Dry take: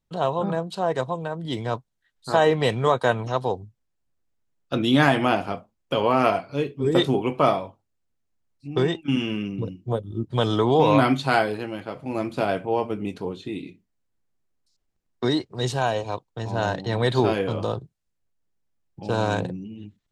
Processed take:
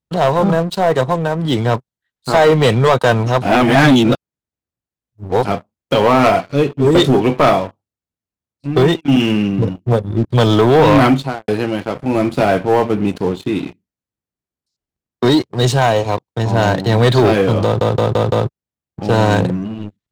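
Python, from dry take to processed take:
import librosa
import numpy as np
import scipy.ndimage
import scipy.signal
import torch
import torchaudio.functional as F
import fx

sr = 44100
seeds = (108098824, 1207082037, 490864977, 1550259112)

y = fx.studio_fade_out(x, sr, start_s=11.0, length_s=0.48)
y = fx.edit(y, sr, fx.reverse_span(start_s=3.42, length_s=2.03),
    fx.stutter_over(start_s=17.64, slice_s=0.17, count=5), tone=tone)
y = scipy.signal.sosfilt(scipy.signal.butter(2, 56.0, 'highpass', fs=sr, output='sos'), y)
y = fx.low_shelf(y, sr, hz=370.0, db=3.0)
y = fx.leveller(y, sr, passes=3)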